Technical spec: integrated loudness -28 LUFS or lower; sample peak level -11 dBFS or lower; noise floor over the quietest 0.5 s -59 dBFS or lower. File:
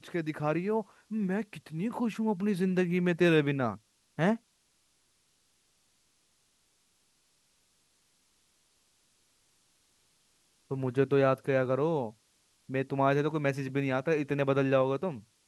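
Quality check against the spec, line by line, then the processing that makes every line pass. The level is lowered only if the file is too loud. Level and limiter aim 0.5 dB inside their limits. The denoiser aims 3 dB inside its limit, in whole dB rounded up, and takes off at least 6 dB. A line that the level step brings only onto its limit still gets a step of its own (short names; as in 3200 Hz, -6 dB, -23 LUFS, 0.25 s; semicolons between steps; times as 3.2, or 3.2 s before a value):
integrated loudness -30.0 LUFS: OK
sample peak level -12.5 dBFS: OK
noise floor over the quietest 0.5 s -71 dBFS: OK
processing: none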